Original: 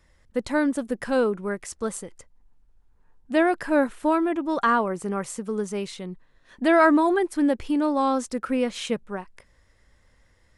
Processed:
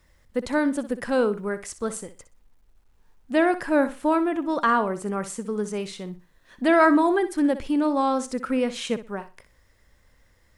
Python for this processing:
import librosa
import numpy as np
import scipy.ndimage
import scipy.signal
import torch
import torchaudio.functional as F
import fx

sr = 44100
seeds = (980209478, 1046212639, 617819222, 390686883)

y = fx.quant_dither(x, sr, seeds[0], bits=12, dither='none')
y = fx.room_flutter(y, sr, wall_m=10.6, rt60_s=0.28)